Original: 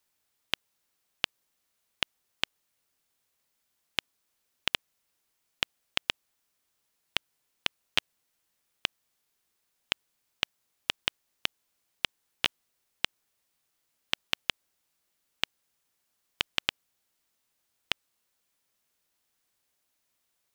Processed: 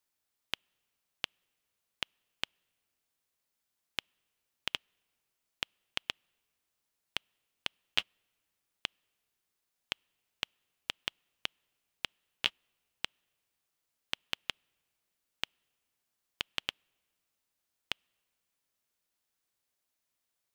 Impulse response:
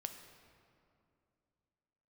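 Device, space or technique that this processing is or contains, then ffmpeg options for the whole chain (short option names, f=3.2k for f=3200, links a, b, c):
keyed gated reverb: -filter_complex "[0:a]asplit=3[a][b][c];[1:a]atrim=start_sample=2205[d];[b][d]afir=irnorm=-1:irlink=0[e];[c]apad=whole_len=906150[f];[e][f]sidechaingate=range=-36dB:threshold=-29dB:ratio=16:detection=peak,volume=9.5dB[g];[a][g]amix=inputs=2:normalize=0,volume=-7dB"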